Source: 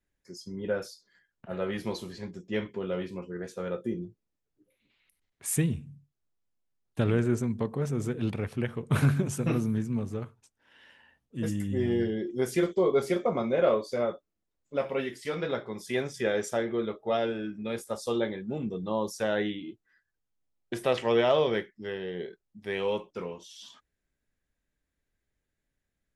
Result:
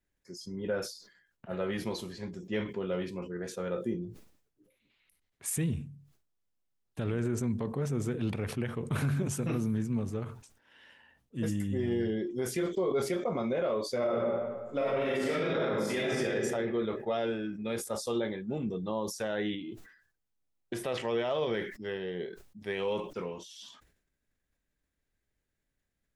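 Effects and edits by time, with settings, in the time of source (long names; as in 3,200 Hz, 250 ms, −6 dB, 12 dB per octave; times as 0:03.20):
0:13.98–0:16.25: thrown reverb, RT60 1.4 s, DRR −7.5 dB
whole clip: brickwall limiter −21.5 dBFS; level that may fall only so fast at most 92 dB per second; level −1 dB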